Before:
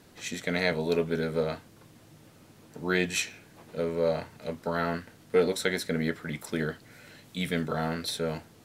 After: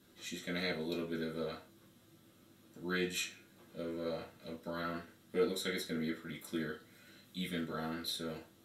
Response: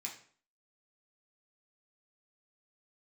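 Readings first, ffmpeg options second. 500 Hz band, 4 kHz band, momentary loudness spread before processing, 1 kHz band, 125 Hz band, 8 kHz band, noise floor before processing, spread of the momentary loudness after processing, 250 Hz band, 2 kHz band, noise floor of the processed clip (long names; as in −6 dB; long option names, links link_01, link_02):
−11.0 dB, −5.5 dB, 11 LU, −10.5 dB, −11.5 dB, −8.5 dB, −56 dBFS, 13 LU, −7.5 dB, −9.5 dB, −65 dBFS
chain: -filter_complex "[1:a]atrim=start_sample=2205,asetrate=70560,aresample=44100[link_01];[0:a][link_01]afir=irnorm=-1:irlink=0,volume=-2dB"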